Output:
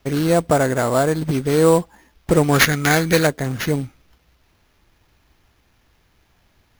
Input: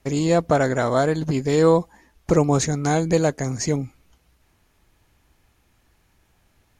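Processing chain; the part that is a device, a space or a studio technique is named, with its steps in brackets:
0:02.43–0:03.27: flat-topped bell 3,200 Hz +10.5 dB 2.8 octaves
early companding sampler (sample-rate reduction 8,400 Hz, jitter 0%; log-companded quantiser 6 bits)
level +2 dB

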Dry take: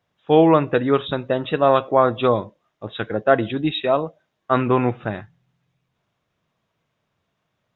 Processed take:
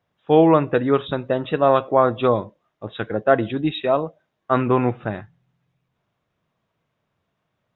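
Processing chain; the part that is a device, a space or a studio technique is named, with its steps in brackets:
behind a face mask (high-shelf EQ 3,300 Hz −7 dB)

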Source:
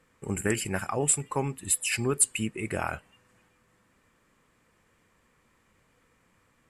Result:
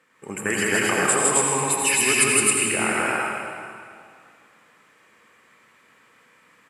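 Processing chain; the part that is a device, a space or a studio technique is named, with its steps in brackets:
stadium PA (high-pass filter 220 Hz 12 dB per octave; parametric band 2,000 Hz +6.5 dB 2.1 octaves; loudspeakers that aren't time-aligned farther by 55 metres −1 dB, 91 metres 0 dB; convolution reverb RT60 2.2 s, pre-delay 72 ms, DRR 0 dB)

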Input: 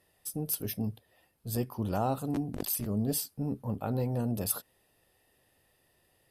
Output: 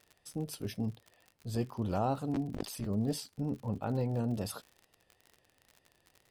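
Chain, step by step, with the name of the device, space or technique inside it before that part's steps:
lo-fi chain (low-pass filter 6,100 Hz 12 dB per octave; tape wow and flutter; surface crackle 68 per second −42 dBFS)
level −1.5 dB

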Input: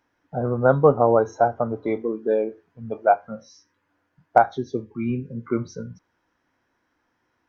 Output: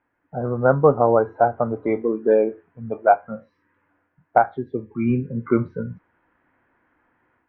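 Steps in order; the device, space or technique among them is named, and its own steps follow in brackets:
Chebyshev low-pass filter 2,300 Hz, order 2
action camera in a waterproof case (low-pass filter 2,700 Hz 24 dB per octave; automatic gain control gain up to 8 dB; level −1 dB; AAC 48 kbit/s 32,000 Hz)

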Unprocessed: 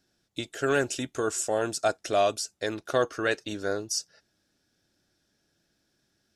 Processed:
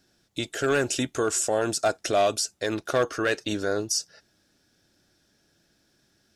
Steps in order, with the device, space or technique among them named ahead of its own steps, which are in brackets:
clipper into limiter (hard clipping −17.5 dBFS, distortion −19 dB; brickwall limiter −22 dBFS, peak gain reduction 4.5 dB)
level +6.5 dB

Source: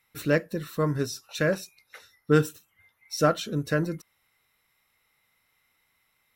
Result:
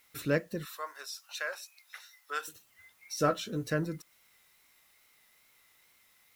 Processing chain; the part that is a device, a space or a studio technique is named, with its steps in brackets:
noise-reduction cassette on a plain deck (one half of a high-frequency compander encoder only; tape wow and flutter; white noise bed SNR 34 dB)
0:00.65–0:02.48: high-pass filter 740 Hz 24 dB per octave
0:03.16–0:03.70: double-tracking delay 16 ms −7 dB
level −5.5 dB

